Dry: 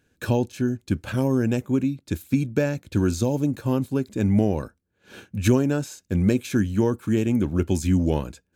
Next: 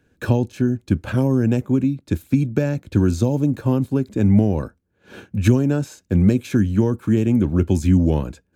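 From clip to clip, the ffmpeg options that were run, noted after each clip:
-filter_complex "[0:a]highshelf=f=2300:g=-9,acrossover=split=220|3000[s0][s1][s2];[s1]acompressor=threshold=0.0562:ratio=6[s3];[s0][s3][s2]amix=inputs=3:normalize=0,volume=2"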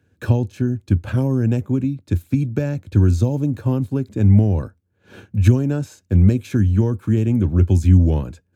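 -af "highpass=71,equalizer=f=91:t=o:w=0.77:g=11.5,volume=0.708"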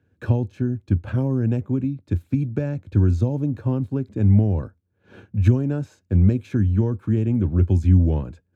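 -af "lowpass=f=2200:p=1,volume=0.708"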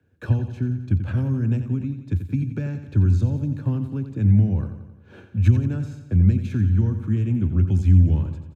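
-filter_complex "[0:a]acrossover=split=150|240|1200[s0][s1][s2][s3];[s2]acompressor=threshold=0.0112:ratio=5[s4];[s0][s1][s4][s3]amix=inputs=4:normalize=0,aecho=1:1:88|176|264|352|440|528|616:0.316|0.18|0.103|0.0586|0.0334|0.019|0.0108"

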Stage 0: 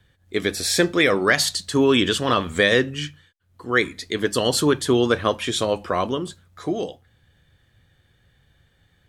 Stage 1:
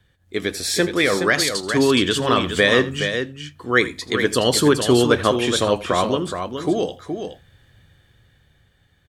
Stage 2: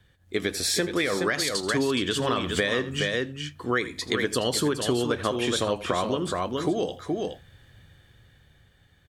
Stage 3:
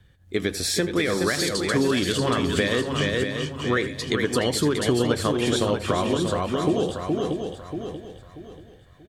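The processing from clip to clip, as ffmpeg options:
-filter_complex "[0:a]dynaudnorm=f=230:g=13:m=3.76,asplit=2[s0][s1];[s1]aecho=0:1:82|420:0.133|0.422[s2];[s0][s2]amix=inputs=2:normalize=0,volume=0.891"
-af "acompressor=threshold=0.0794:ratio=6"
-af "lowshelf=f=290:g=6.5,aecho=1:1:635|1270|1905|2540:0.473|0.151|0.0485|0.0155"

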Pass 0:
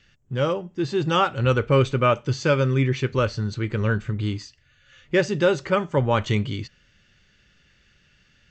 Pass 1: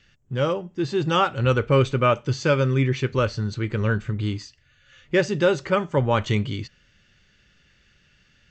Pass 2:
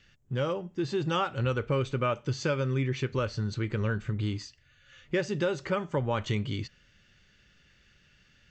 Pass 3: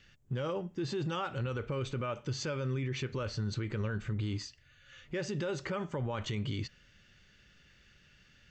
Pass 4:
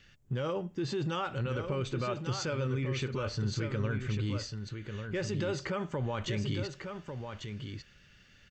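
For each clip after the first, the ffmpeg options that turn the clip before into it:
-af anull
-af "acompressor=threshold=0.0562:ratio=2.5,volume=0.75"
-af "alimiter=level_in=1.5:limit=0.0631:level=0:latency=1:release=48,volume=0.668"
-af "aecho=1:1:1146:0.447,volume=1.19"

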